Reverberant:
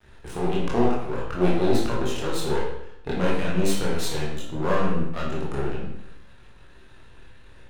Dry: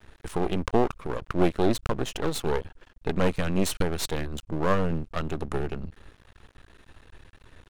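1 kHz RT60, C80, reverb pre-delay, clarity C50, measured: 0.75 s, 5.0 dB, 18 ms, 1.5 dB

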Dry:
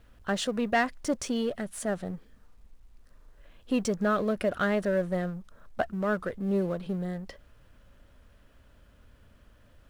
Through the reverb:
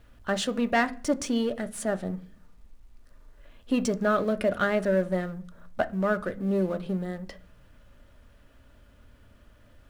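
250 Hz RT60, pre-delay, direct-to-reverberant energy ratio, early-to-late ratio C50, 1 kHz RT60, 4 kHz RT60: 0.75 s, 3 ms, 8.5 dB, 19.5 dB, 0.40 s, 0.55 s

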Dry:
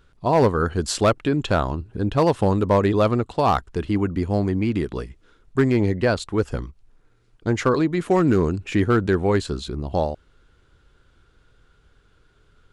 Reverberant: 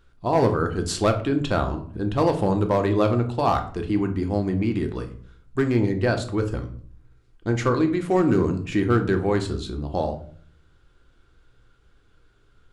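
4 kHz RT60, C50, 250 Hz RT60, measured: 0.35 s, 11.5 dB, 0.70 s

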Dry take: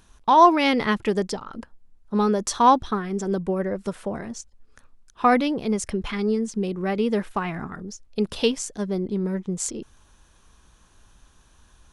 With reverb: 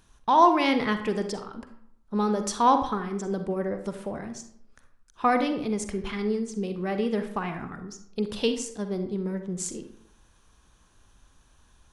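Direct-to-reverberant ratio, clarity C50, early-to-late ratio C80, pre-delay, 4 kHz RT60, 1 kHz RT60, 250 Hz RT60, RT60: 7.5 dB, 9.0 dB, 12.0 dB, 40 ms, 0.45 s, 0.70 s, 0.75 s, 0.70 s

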